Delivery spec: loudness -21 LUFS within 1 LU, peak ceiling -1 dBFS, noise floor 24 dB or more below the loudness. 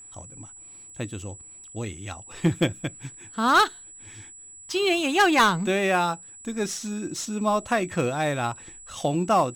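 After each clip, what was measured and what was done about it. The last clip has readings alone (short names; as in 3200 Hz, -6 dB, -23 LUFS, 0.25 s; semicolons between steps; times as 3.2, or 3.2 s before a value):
steady tone 7800 Hz; tone level -43 dBFS; loudness -24.5 LUFS; peak -11.5 dBFS; loudness target -21.0 LUFS
-> notch 7800 Hz, Q 30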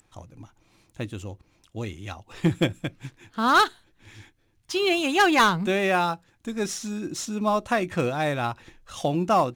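steady tone none; loudness -24.5 LUFS; peak -11.5 dBFS; loudness target -21.0 LUFS
-> gain +3.5 dB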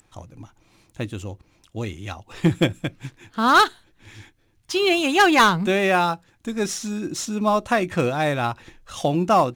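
loudness -21.0 LUFS; peak -8.0 dBFS; noise floor -62 dBFS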